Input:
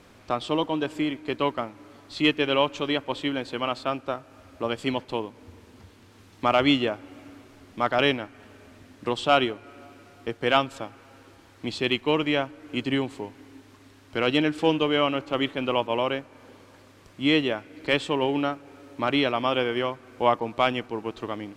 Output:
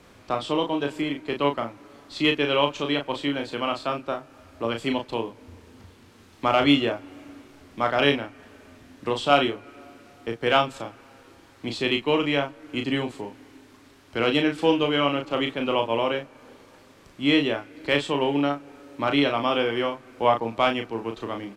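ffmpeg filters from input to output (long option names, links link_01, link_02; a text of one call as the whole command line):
ffmpeg -i in.wav -filter_complex "[0:a]asplit=2[link_01][link_02];[link_02]adelay=35,volume=-5.5dB[link_03];[link_01][link_03]amix=inputs=2:normalize=0,acrossover=split=190|4400[link_04][link_05][link_06];[link_06]volume=32.5dB,asoftclip=hard,volume=-32.5dB[link_07];[link_04][link_05][link_07]amix=inputs=3:normalize=0" out.wav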